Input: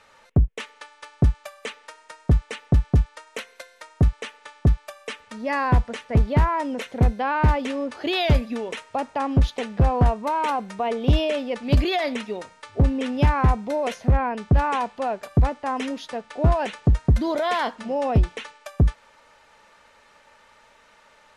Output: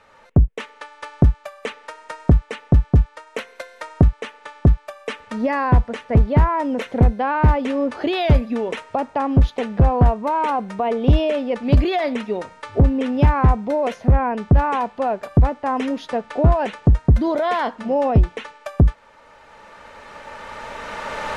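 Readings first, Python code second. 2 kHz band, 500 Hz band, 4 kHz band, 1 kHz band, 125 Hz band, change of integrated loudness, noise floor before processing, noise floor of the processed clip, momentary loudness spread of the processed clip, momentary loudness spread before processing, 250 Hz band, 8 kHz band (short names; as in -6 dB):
+1.5 dB, +4.5 dB, -1.5 dB, +3.5 dB, +4.0 dB, +4.0 dB, -56 dBFS, -50 dBFS, 16 LU, 15 LU, +5.0 dB, n/a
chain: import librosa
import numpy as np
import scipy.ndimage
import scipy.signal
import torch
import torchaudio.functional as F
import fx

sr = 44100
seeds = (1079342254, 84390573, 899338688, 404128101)

y = fx.recorder_agc(x, sr, target_db=-16.0, rise_db_per_s=11.0, max_gain_db=30)
y = fx.high_shelf(y, sr, hz=2500.0, db=-10.5)
y = F.gain(torch.from_numpy(y), 4.0).numpy()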